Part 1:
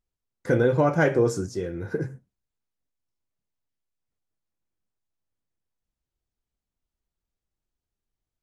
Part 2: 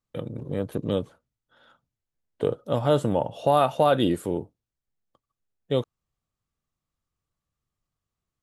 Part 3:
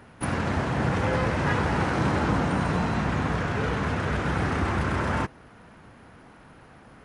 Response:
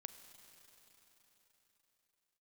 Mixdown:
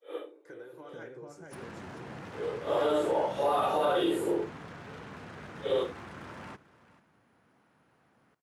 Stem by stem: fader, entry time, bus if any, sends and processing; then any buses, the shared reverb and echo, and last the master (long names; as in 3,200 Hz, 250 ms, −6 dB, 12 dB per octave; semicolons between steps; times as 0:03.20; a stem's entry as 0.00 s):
−19.5 dB, 0.00 s, bus A, send −8 dB, echo send −5 dB, downward compressor, threshold −21 dBFS, peak gain reduction 6 dB
+1.5 dB, 0.00 s, bus A, no send, no echo send, random phases in long frames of 200 ms; automatic ducking −20 dB, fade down 0.30 s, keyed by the first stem
−16.5 dB, 1.30 s, no bus, no send, echo send −17.5 dB, wavefolder on the positive side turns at −23.5 dBFS
bus A: 0.0 dB, Chebyshev high-pass with heavy ripple 300 Hz, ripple 3 dB; brickwall limiter −19 dBFS, peak gain reduction 11 dB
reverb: on, RT60 4.3 s, pre-delay 33 ms
echo: single-tap delay 440 ms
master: high-pass filter 120 Hz 12 dB per octave